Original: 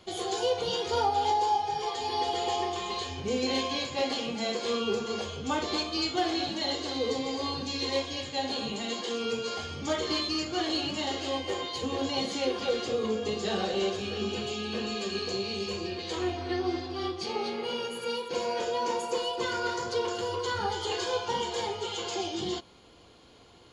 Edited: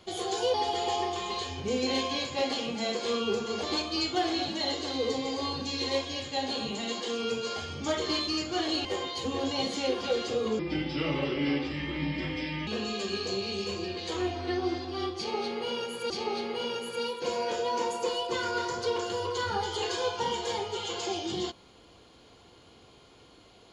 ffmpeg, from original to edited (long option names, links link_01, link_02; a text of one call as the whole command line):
ffmpeg -i in.wav -filter_complex "[0:a]asplit=7[link_01][link_02][link_03][link_04][link_05][link_06][link_07];[link_01]atrim=end=0.542[link_08];[link_02]atrim=start=2.138:end=5.232[link_09];[link_03]atrim=start=5.638:end=10.862[link_10];[link_04]atrim=start=11.428:end=13.174[link_11];[link_05]atrim=start=13.17:end=14.69,asetpts=PTS-STARTPTS,asetrate=32193,aresample=44100[link_12];[link_06]atrim=start=14.686:end=18.122[link_13];[link_07]atrim=start=17.188[link_14];[link_08][link_09]acrossfade=duration=0.004:curve1=hsin:curve2=hsin[link_15];[link_15][link_10]acrossfade=duration=0.004:curve1=hsin:curve2=hsin[link_16];[link_16][link_11]acrossfade=duration=0.004:curve1=hsin:curve2=hsin[link_17];[link_17][link_12]acrossfade=duration=0.004:curve1=hsin:curve2=hsin[link_18];[link_18][link_13]acrossfade=duration=0.004:curve1=hsin:curve2=hsin[link_19];[link_19][link_14]acrossfade=duration=0.004:curve1=hsin:curve2=hsin" out.wav